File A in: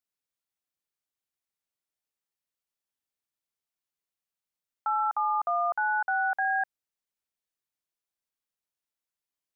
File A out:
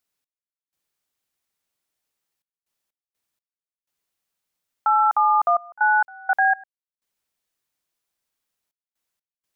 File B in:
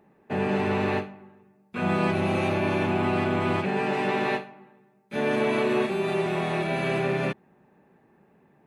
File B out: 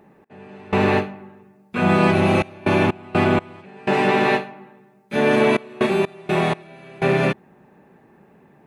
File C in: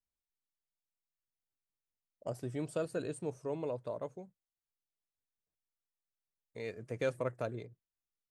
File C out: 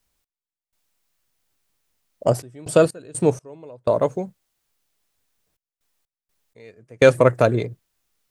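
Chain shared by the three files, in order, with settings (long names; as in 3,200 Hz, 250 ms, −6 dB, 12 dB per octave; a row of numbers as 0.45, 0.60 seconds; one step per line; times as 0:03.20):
gate pattern "x..xxxxxxx.x." 62 BPM −24 dB
loudness normalisation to −20 LKFS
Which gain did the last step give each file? +9.5, +8.0, +21.0 decibels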